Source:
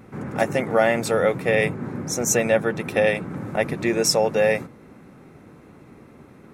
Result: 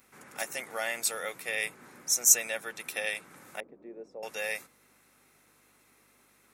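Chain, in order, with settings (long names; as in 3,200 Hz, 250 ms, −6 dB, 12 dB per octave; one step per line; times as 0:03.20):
0:03.60–0:04.23: flat-topped band-pass 330 Hz, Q 0.94
mains hum 50 Hz, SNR 19 dB
first difference
level +3 dB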